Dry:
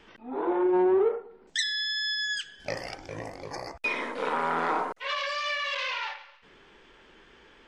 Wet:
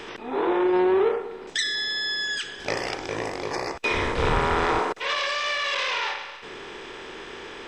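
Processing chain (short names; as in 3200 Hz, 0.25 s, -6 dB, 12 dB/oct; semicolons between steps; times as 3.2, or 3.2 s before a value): per-bin compression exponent 0.6; 3.9–4.77 wind noise 96 Hz -21 dBFS; gain +1 dB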